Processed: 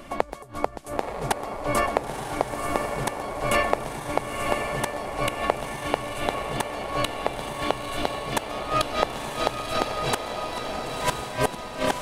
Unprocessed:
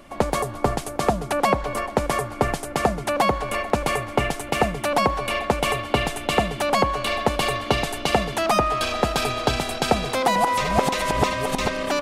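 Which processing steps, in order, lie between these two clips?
inverted gate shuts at -13 dBFS, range -24 dB; on a send: echo that smears into a reverb 989 ms, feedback 45%, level -3.5 dB; on the sum: trim +4 dB

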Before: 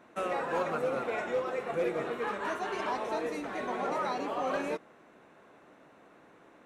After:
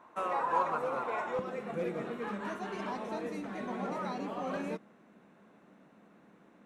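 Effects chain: peaking EQ 1 kHz +14.5 dB 0.65 oct, from 1.39 s 200 Hz; trim -6 dB

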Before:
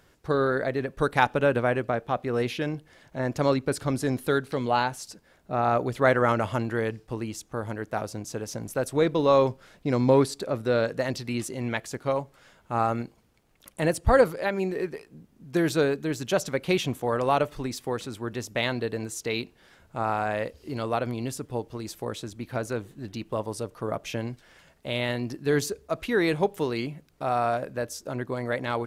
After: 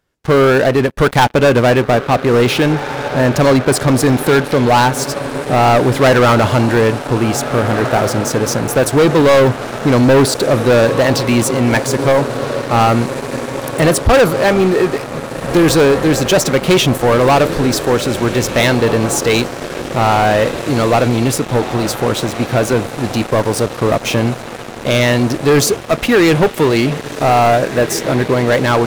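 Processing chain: echo that smears into a reverb 1757 ms, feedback 70%, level -15 dB; waveshaping leveller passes 5

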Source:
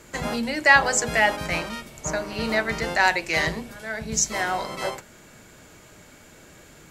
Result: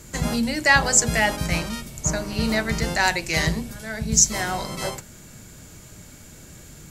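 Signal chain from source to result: tone controls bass +12 dB, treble +10 dB; trim -2 dB

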